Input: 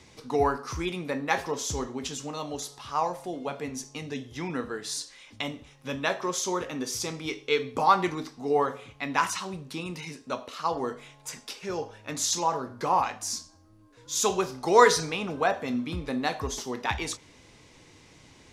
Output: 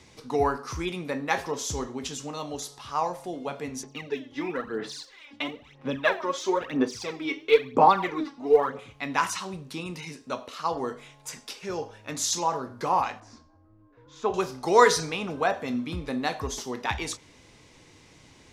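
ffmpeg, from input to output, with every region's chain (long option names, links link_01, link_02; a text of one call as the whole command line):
ffmpeg -i in.wav -filter_complex "[0:a]asettb=1/sr,asplit=3[link_01][link_02][link_03];[link_01]atrim=end=3.834[link_04];[link_02]atrim=start=3.83:end=8.79,asetpts=PTS-STARTPTS,afade=type=in:duration=0.004:curve=qsin,afade=type=out:start_time=4.956:duration=0.004:curve=qsin,lowpass=8800,acrossover=split=160 3900:gain=0.2 1 0.2[link_05][link_06][link_07];[link_05][link_06][link_07]amix=inputs=3:normalize=0,aphaser=in_gain=1:out_gain=1:delay=3.6:decay=0.7:speed=1:type=sinusoidal[link_08];[link_03]atrim=start=8.786[link_09];[link_04][link_08]acrossfade=duration=0.004:curve1=hsin:curve2=qsin[link_10];[link_10][link_09]acrossfade=duration=0.004:curve1=qsin:curve2=hsin,asettb=1/sr,asplit=3[link_11][link_12][link_13];[link_11]atrim=end=13.204[link_14];[link_12]atrim=start=13.2:end=14.34,asetpts=PTS-STARTPTS,afade=type=in:duration=0.004:curve=qsin,afade=type=out:start_time=1.136:duration=0.004:curve=qsin,lowpass=1500,equalizer=frequency=180:width=6.3:gain=-12[link_15];[link_13]atrim=start=14.336[link_16];[link_14][link_15]acrossfade=duration=0.004:curve1=hsin:curve2=qsin[link_17];[link_17][link_16]acrossfade=duration=0.004:curve1=qsin:curve2=hsin" out.wav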